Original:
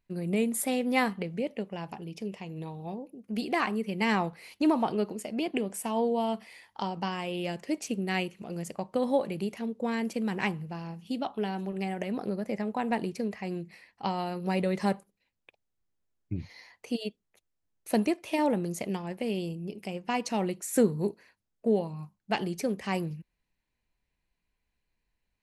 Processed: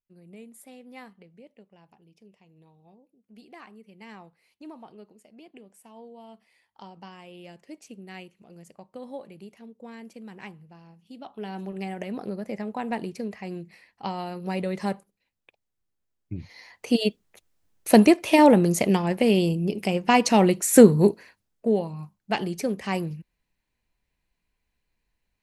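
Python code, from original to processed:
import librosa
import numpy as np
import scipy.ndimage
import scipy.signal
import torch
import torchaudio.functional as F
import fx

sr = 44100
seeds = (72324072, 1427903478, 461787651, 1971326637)

y = fx.gain(x, sr, db=fx.line((6.15, -18.5), (6.85, -12.0), (11.12, -12.0), (11.59, -0.5), (16.41, -0.5), (17.01, 11.5), (21.07, 11.5), (21.68, 3.0)))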